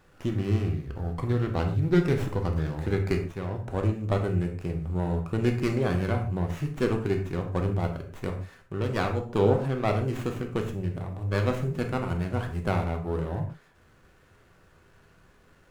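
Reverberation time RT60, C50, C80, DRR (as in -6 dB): no single decay rate, 8.0 dB, 12.0 dB, 3.0 dB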